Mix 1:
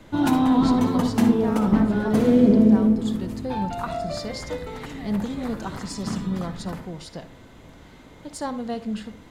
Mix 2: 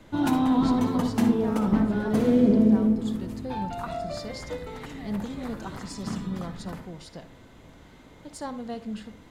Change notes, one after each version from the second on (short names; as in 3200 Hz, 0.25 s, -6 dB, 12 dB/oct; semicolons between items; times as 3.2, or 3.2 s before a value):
speech -5.5 dB; background -3.5 dB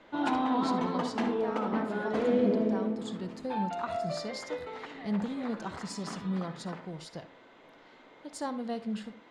background: add BPF 410–3400 Hz; master: add bell 15000 Hz -7.5 dB 0.54 oct